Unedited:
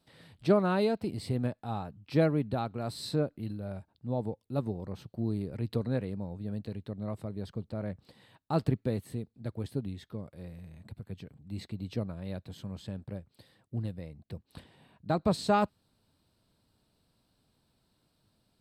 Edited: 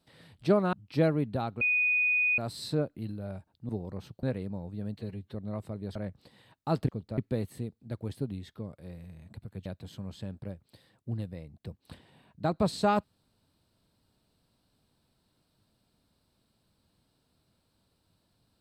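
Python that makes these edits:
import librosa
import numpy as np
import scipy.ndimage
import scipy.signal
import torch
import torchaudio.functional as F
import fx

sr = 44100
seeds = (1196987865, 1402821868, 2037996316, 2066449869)

y = fx.edit(x, sr, fx.cut(start_s=0.73, length_s=1.18),
    fx.insert_tone(at_s=2.79, length_s=0.77, hz=2480.0, db=-23.0),
    fx.cut(start_s=4.1, length_s=0.54),
    fx.cut(start_s=5.18, length_s=0.72),
    fx.stretch_span(start_s=6.64, length_s=0.25, factor=1.5),
    fx.move(start_s=7.5, length_s=0.29, to_s=8.72),
    fx.cut(start_s=11.2, length_s=1.11), tone=tone)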